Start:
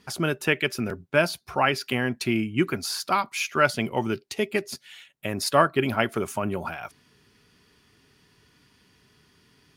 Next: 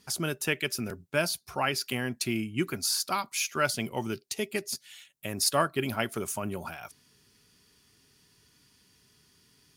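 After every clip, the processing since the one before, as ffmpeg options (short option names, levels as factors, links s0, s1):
-af "bass=f=250:g=2,treble=f=4000:g=12,volume=0.447"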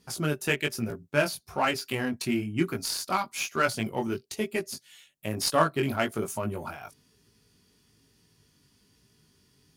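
-filter_complex "[0:a]flanger=delay=17.5:depth=3.8:speed=1.1,asplit=2[s0][s1];[s1]adynamicsmooth=sensitivity=6.5:basefreq=980,volume=1[s2];[s0][s2]amix=inputs=2:normalize=0"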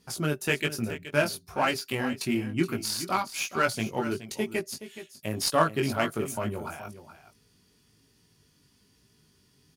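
-af "aecho=1:1:422:0.224"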